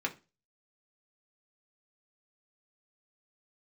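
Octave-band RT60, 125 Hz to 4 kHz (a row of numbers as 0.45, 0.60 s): 0.40, 0.35, 0.30, 0.25, 0.30, 0.25 s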